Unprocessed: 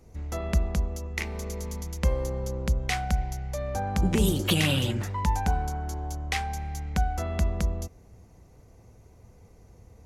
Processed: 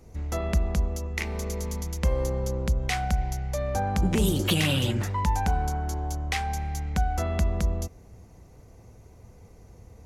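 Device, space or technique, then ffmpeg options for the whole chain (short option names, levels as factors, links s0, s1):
clipper into limiter: -af "asoftclip=type=hard:threshold=0.178,alimiter=limit=0.126:level=0:latency=1:release=126,volume=1.41"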